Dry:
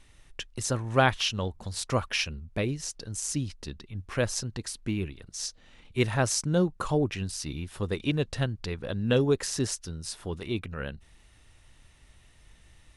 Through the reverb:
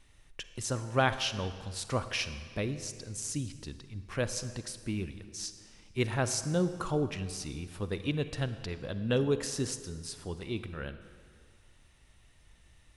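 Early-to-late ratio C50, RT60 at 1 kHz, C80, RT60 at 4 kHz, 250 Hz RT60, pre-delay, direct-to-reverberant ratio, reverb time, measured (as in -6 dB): 11.5 dB, 2.0 s, 12.5 dB, 1.5 s, 1.9 s, 40 ms, 11.0 dB, 2.0 s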